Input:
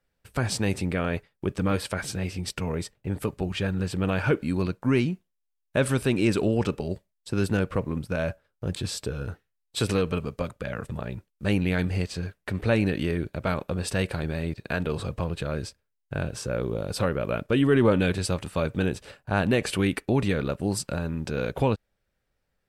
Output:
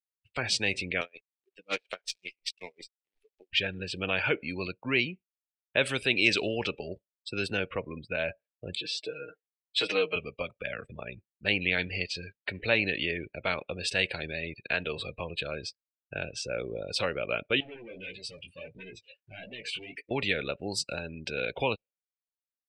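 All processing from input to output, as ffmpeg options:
ffmpeg -i in.wav -filter_complex "[0:a]asettb=1/sr,asplit=3[link_01][link_02][link_03];[link_01]atrim=end=1.014[link_04];[link_02]atrim=start=1.01:end=3.53,asetpts=PTS-STARTPTS,afade=type=in:duration=0.004:curve=qsin,afade=type=out:start_time=2.516:duration=0.004:curve=qsin,highpass=270,acrusher=bits=6:dc=4:mix=0:aa=0.000001,aeval=exprs='val(0)*pow(10,-28*(0.5-0.5*cos(2*PI*5.5*n/s))/20)':channel_layout=same[link_05];[link_03]atrim=start=3.526[link_06];[link_04][link_05]acrossfade=duration=0.004:curve1=hsin:curve2=qsin[link_07];[link_07][link_06]acrossfade=duration=0.004:curve1=qsin:curve2=hsin,asettb=1/sr,asplit=3[link_08][link_09][link_10];[link_08]atrim=end=6.104[link_11];[link_09]atrim=start=6.1:end=6.58,asetpts=PTS-STARTPTS,afade=type=in:duration=0.004:curve=qsin,afade=type=out:start_time=0.476:duration=0.004:curve=qsin,lowpass=6300,aemphasis=mode=production:type=50kf[link_12];[link_10]atrim=start=6.576[link_13];[link_11][link_12]acrossfade=duration=0.004:curve1=hsin:curve2=qsin[link_14];[link_14][link_13]acrossfade=duration=0.004:curve1=qsin:curve2=hsin,asettb=1/sr,asplit=3[link_15][link_16][link_17];[link_15]atrim=end=8.764[link_18];[link_16]atrim=start=8.76:end=10.16,asetpts=PTS-STARTPTS,afade=type=in:duration=0.004:curve=qsin,afade=type=out:start_time=1.396:duration=0.004:curve=qsin,highpass=280,highshelf=frequency=4500:gain=-11,aecho=1:1:6.4:0.77,atrim=end_sample=61740[link_19];[link_17]atrim=start=10.156[link_20];[link_18][link_19]acrossfade=duration=0.004:curve1=hsin:curve2=qsin[link_21];[link_21][link_20]acrossfade=duration=0.004:curve1=qsin:curve2=hsin,asettb=1/sr,asplit=3[link_22][link_23][link_24];[link_22]atrim=end=17.604[link_25];[link_23]atrim=start=17.6:end=20.11,asetpts=PTS-STARTPTS,afade=type=in:duration=0.004:curve=qsin,afade=type=out:start_time=2.506:duration=0.004:curve=qsin,acompressor=threshold=-22dB:ratio=4:attack=3.2:release=140:knee=1:detection=peak,volume=32.5dB,asoftclip=hard,volume=-32.5dB,flanger=delay=15.5:depth=7.8:speed=1.6[link_26];[link_24]atrim=start=20.106[link_27];[link_25][link_26]acrossfade=duration=0.004:curve1=hsin:curve2=qsin[link_28];[link_28][link_27]acrossfade=duration=0.004:curve1=qsin:curve2=hsin,highshelf=frequency=1800:width_type=q:width=1.5:gain=8,afftdn=noise_reduction=34:noise_floor=-36,acrossover=split=410 5900:gain=0.251 1 0.1[link_29][link_30][link_31];[link_29][link_30][link_31]amix=inputs=3:normalize=0,volume=-1.5dB" out.wav

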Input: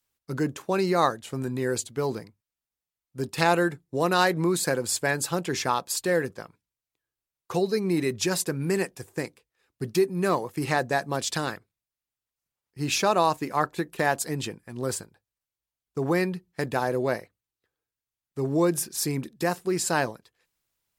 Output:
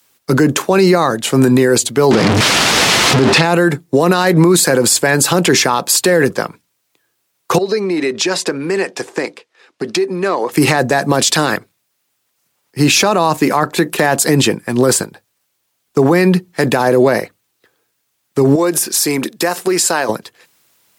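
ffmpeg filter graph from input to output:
ffmpeg -i in.wav -filter_complex "[0:a]asettb=1/sr,asplit=3[link_01][link_02][link_03];[link_01]atrim=end=2.114[link_04];[link_02]atrim=start=2.11:end=3.43,asetpts=PTS-STARTPTS,afade=type=in:duration=0.004:curve=qsin,afade=type=out:start_time=1.316:duration=0.004:curve=qsin,aeval=exprs='val(0)+0.5*0.0708*sgn(val(0))':channel_layout=same,lowpass=4800,acompressor=mode=upward:threshold=-27dB:ratio=2.5:attack=3.2:release=140:knee=2.83:detection=peak[link_05];[link_03]atrim=start=3.426[link_06];[link_04][link_05]acrossfade=duration=0.004:curve1=hsin:curve2=qsin[link_07];[link_07][link_06]acrossfade=duration=0.004:curve1=qsin:curve2=hsin,asettb=1/sr,asplit=3[link_08][link_09][link_10];[link_08]atrim=end=7.584[link_11];[link_09]atrim=start=7.58:end=10.52,asetpts=PTS-STARTPTS,afade=type=in:duration=0.004:curve=qsin,afade=type=out:start_time=2.936:duration=0.004:curve=qsin,acompressor=threshold=-33dB:ratio=10:attack=3.2:release=140:knee=1:detection=peak,highpass=290,lowpass=5600[link_12];[link_10]atrim=start=10.516[link_13];[link_11][link_12]acrossfade=duration=0.004:curve1=hsin:curve2=qsin[link_14];[link_14][link_13]acrossfade=duration=0.004:curve1=qsin:curve2=hsin,asettb=1/sr,asplit=3[link_15][link_16][link_17];[link_15]atrim=end=18.554[link_18];[link_16]atrim=start=18.55:end=20.09,asetpts=PTS-STARTPTS,afade=type=in:duration=0.004:curve=qsin,afade=type=out:start_time=1.536:duration=0.004:curve=qsin,equalizer=frequency=120:width_type=o:width=2.2:gain=-12,acompressor=threshold=-34dB:ratio=6:attack=3.2:release=140:knee=1:detection=peak[link_19];[link_17]atrim=start=20.086[link_20];[link_18][link_19]acrossfade=duration=0.004:curve1=hsin:curve2=qsin[link_21];[link_21][link_20]acrossfade=duration=0.004:curve1=qsin:curve2=hsin,highpass=160,acrossover=split=230[link_22][link_23];[link_23]acompressor=threshold=-24dB:ratio=6[link_24];[link_22][link_24]amix=inputs=2:normalize=0,alimiter=level_in=25dB:limit=-1dB:release=50:level=0:latency=1,volume=-1.5dB" out.wav

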